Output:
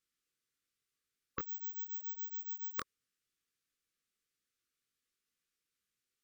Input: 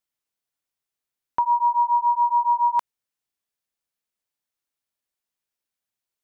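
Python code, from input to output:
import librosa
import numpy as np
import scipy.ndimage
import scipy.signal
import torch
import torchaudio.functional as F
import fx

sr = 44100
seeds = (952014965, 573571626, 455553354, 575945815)

y = np.repeat(scipy.signal.resample_poly(x, 1, 2), 2)[:len(x)]
y = fx.chorus_voices(y, sr, voices=2, hz=0.86, base_ms=20, depth_ms=4.1, mix_pct=35)
y = fx.brickwall_bandstop(y, sr, low_hz=530.0, high_hz=1100.0)
y = y * librosa.db_to_amplitude(4.0)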